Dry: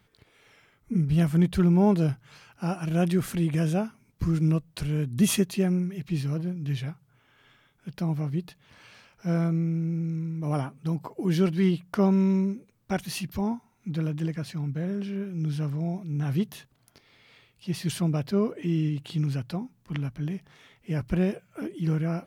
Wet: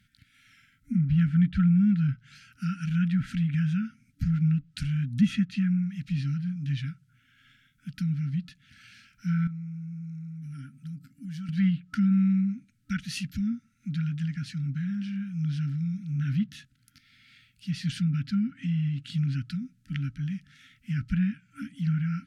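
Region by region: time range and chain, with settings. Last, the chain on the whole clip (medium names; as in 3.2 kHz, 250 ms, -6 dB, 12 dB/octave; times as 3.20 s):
9.47–11.49 s: high-pass 54 Hz + peaking EQ 3 kHz -3.5 dB 2 oct + compression 2:1, threshold -42 dBFS
whole clip: low-pass that closes with the level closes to 2.3 kHz, closed at -20.5 dBFS; FFT band-reject 290–1300 Hz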